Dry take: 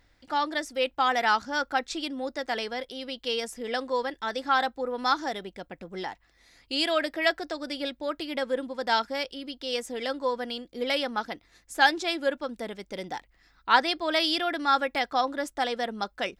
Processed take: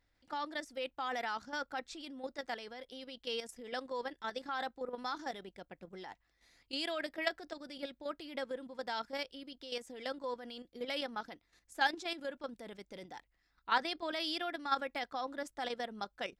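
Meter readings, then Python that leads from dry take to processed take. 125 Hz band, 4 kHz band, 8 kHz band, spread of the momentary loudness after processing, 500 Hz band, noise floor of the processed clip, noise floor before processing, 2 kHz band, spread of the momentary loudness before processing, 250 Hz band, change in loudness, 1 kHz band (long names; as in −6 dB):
can't be measured, −11.0 dB, −12.0 dB, 14 LU, −11.0 dB, −77 dBFS, −65 dBFS, −11.5 dB, 13 LU, −11.5 dB, −11.5 dB, −12.0 dB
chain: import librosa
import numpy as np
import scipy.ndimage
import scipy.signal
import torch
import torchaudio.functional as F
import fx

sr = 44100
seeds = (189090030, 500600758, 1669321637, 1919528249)

y = fx.level_steps(x, sr, step_db=10)
y = F.gain(torch.from_numpy(y), -7.0).numpy()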